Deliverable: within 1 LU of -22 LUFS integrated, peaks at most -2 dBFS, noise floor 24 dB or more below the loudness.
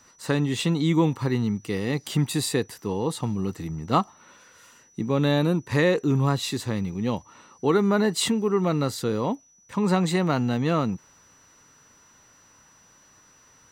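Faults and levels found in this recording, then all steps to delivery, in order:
steady tone 5900 Hz; tone level -56 dBFS; loudness -25.0 LUFS; peak -7.5 dBFS; loudness target -22.0 LUFS
-> notch 5900 Hz, Q 30; gain +3 dB

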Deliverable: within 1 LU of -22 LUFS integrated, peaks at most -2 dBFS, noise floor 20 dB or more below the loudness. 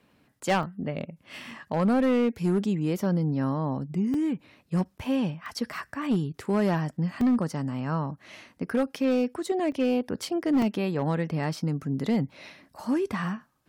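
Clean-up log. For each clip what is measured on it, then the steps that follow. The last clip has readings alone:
clipped 1.4%; flat tops at -18.5 dBFS; dropouts 7; longest dropout 2.9 ms; loudness -28.0 LUFS; peak -18.5 dBFS; loudness target -22.0 LUFS
-> clip repair -18.5 dBFS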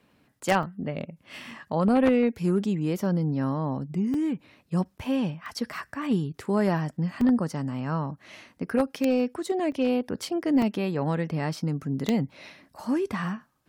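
clipped 0.0%; dropouts 7; longest dropout 2.9 ms
-> interpolate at 0.63/1.51/4.14/5.46/7.21/9.72/10.62, 2.9 ms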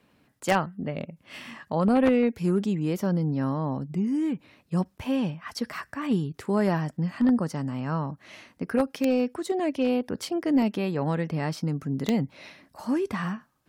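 dropouts 0; loudness -27.0 LUFS; peak -9.5 dBFS; loudness target -22.0 LUFS
-> gain +5 dB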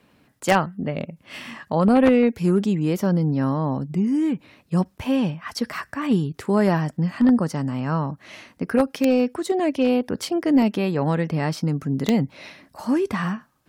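loudness -22.0 LUFS; peak -4.5 dBFS; noise floor -61 dBFS

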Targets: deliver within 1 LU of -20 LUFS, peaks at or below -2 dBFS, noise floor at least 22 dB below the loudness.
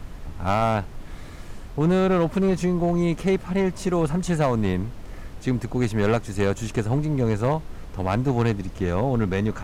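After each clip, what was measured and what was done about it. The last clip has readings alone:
clipped 1.3%; flat tops at -14.0 dBFS; noise floor -39 dBFS; noise floor target -46 dBFS; loudness -23.5 LUFS; peak -14.0 dBFS; loudness target -20.0 LUFS
-> clip repair -14 dBFS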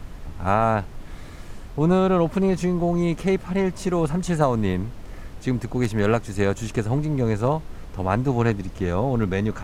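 clipped 0.0%; noise floor -39 dBFS; noise floor target -45 dBFS
-> noise print and reduce 6 dB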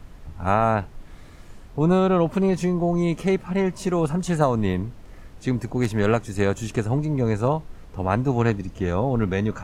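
noise floor -44 dBFS; noise floor target -45 dBFS
-> noise print and reduce 6 dB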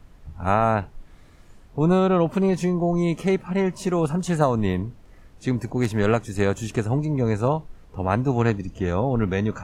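noise floor -50 dBFS; loudness -23.0 LUFS; peak -5.5 dBFS; loudness target -20.0 LUFS
-> gain +3 dB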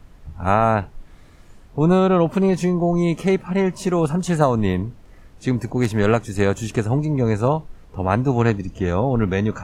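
loudness -20.0 LUFS; peak -2.5 dBFS; noise floor -47 dBFS

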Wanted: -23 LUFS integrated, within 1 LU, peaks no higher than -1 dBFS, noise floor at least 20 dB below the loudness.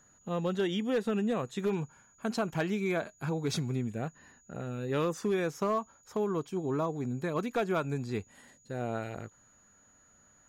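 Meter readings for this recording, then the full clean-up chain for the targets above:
clipped 0.5%; flat tops at -23.0 dBFS; steady tone 6800 Hz; tone level -62 dBFS; loudness -33.0 LUFS; peak -23.0 dBFS; loudness target -23.0 LUFS
-> clip repair -23 dBFS; notch 6800 Hz, Q 30; gain +10 dB

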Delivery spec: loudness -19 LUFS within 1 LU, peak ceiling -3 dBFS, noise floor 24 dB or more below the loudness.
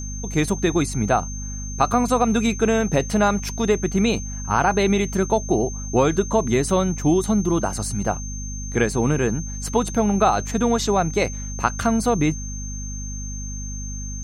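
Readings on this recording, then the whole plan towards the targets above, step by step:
hum 50 Hz; harmonics up to 250 Hz; hum level -29 dBFS; steady tone 6300 Hz; tone level -34 dBFS; loudness -22.0 LUFS; peak -3.5 dBFS; loudness target -19.0 LUFS
-> notches 50/100/150/200/250 Hz; notch 6300 Hz, Q 30; gain +3 dB; limiter -3 dBFS

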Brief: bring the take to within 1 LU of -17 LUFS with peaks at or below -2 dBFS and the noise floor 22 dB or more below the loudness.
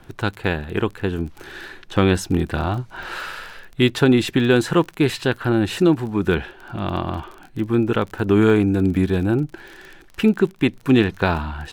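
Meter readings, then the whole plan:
ticks 27/s; loudness -20.5 LUFS; peak -2.0 dBFS; loudness target -17.0 LUFS
-> de-click; gain +3.5 dB; limiter -2 dBFS

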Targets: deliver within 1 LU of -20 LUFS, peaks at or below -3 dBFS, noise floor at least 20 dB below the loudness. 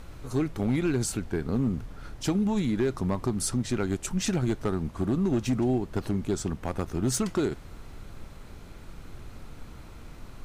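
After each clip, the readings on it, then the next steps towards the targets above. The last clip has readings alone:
clipped 1.3%; flat tops at -19.5 dBFS; noise floor -46 dBFS; noise floor target -49 dBFS; loudness -28.5 LUFS; peak -19.5 dBFS; loudness target -20.0 LUFS
-> clip repair -19.5 dBFS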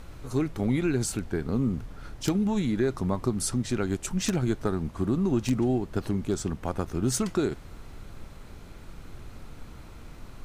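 clipped 0.0%; noise floor -46 dBFS; noise floor target -49 dBFS
-> noise print and reduce 6 dB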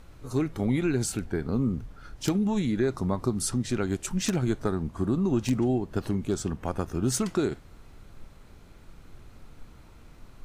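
noise floor -51 dBFS; loudness -28.5 LUFS; peak -10.5 dBFS; loudness target -20.0 LUFS
-> gain +8.5 dB; limiter -3 dBFS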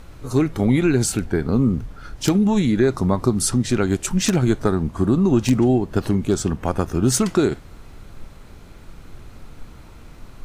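loudness -20.0 LUFS; peak -3.0 dBFS; noise floor -43 dBFS

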